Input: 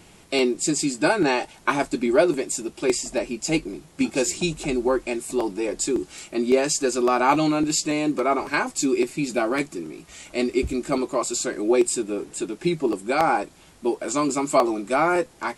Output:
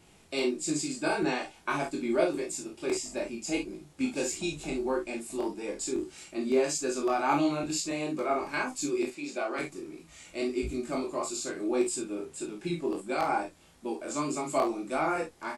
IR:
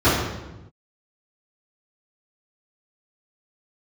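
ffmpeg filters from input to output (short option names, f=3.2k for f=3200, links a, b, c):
-filter_complex "[0:a]flanger=delay=19:depth=4:speed=1.6,asettb=1/sr,asplit=3[a][b][c];[a]atrim=end=9.104[d];[b]atrim=start=9.1:end=9.59,asetpts=PTS-STARTPTS,afade=t=in:d=0.004:c=qsin,afade=t=out:st=0.486:d=0.004:c=qsin,highpass=360,lowpass=7.3k[e];[c]atrim=start=9.586[f];[d][e]acrossfade=d=0.004:c1=hsin:c2=qsin[g];[g][f]acrossfade=d=0.004:c1=qsin:c2=hsin,aecho=1:1:35|48:0.447|0.376,volume=-6.5dB"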